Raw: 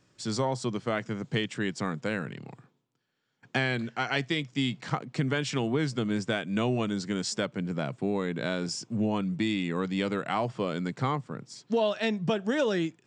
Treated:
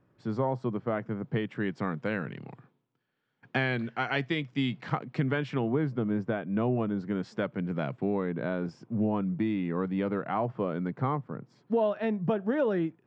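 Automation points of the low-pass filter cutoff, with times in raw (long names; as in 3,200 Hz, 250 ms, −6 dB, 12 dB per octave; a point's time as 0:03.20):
0:01.17 1,300 Hz
0:02.22 2,800 Hz
0:05.14 2,800 Hz
0:05.85 1,200 Hz
0:06.95 1,200 Hz
0:07.89 2,800 Hz
0:08.32 1,400 Hz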